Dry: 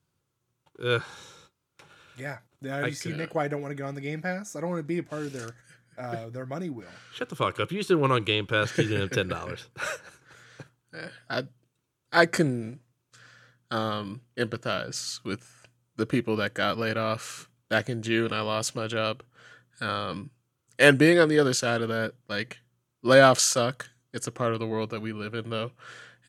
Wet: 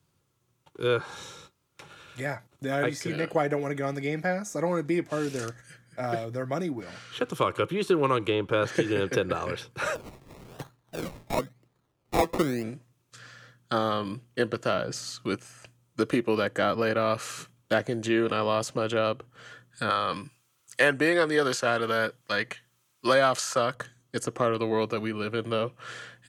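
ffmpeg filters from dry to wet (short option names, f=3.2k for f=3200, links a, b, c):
-filter_complex "[0:a]asplit=3[a][b][c];[a]afade=t=out:st=9.94:d=0.02[d];[b]acrusher=samples=23:mix=1:aa=0.000001:lfo=1:lforange=13.8:lforate=1,afade=t=in:st=9.94:d=0.02,afade=t=out:st=12.62:d=0.02[e];[c]afade=t=in:st=12.62:d=0.02[f];[d][e][f]amix=inputs=3:normalize=0,asettb=1/sr,asplit=3[g][h][i];[g]atrim=end=19.904[j];[h]atrim=start=19.9:end=23.75,asetpts=PTS-STARTPTS,afade=t=in:d=0.004:c=qsin,afade=t=out:st=3.846:d=0.004:c=qsin,tiltshelf=f=730:g=-9[k];[i]atrim=start=23.746[l];[j][k]acrossfade=d=0.004:c1=hsin:c2=qsin[m];[m][l]acrossfade=d=0.004:c1=qsin:c2=hsin,bandreject=f=1.5k:w=18,acrossover=split=260|1500[n][o][p];[n]acompressor=threshold=-42dB:ratio=4[q];[o]acompressor=threshold=-27dB:ratio=4[r];[p]acompressor=threshold=-42dB:ratio=4[s];[q][r][s]amix=inputs=3:normalize=0,volume=5.5dB"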